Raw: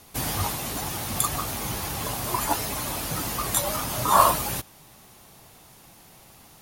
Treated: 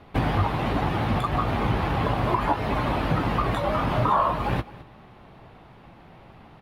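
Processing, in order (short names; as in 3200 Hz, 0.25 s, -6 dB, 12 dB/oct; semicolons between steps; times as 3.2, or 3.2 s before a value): high shelf 11000 Hz -10.5 dB; sample leveller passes 1; compressor 6:1, threshold -26 dBFS, peak gain reduction 15 dB; air absorption 480 m; doubler 18 ms -13.5 dB; echo 0.213 s -19 dB; gain +8.5 dB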